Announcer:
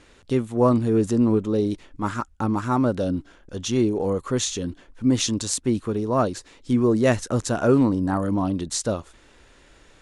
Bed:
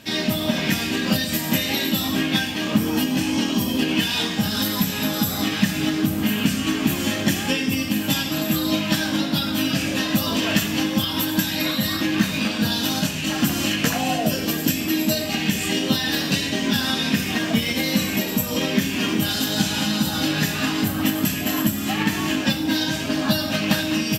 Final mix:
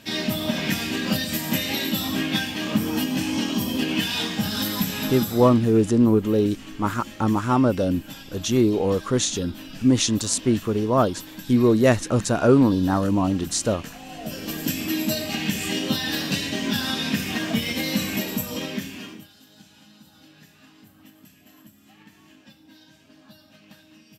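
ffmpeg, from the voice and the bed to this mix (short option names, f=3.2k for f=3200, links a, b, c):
-filter_complex "[0:a]adelay=4800,volume=2dB[a];[1:a]volume=11.5dB,afade=t=out:st=4.96:d=0.66:silence=0.177828,afade=t=in:st=14.09:d=0.73:silence=0.188365,afade=t=out:st=18.22:d=1.06:silence=0.0501187[b];[a][b]amix=inputs=2:normalize=0"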